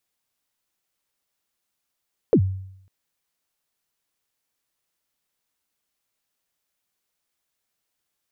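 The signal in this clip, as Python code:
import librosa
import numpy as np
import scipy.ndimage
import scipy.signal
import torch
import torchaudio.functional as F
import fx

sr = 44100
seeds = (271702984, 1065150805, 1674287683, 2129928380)

y = fx.drum_kick(sr, seeds[0], length_s=0.55, level_db=-10.0, start_hz=530.0, end_hz=95.0, sweep_ms=73.0, decay_s=0.73, click=False)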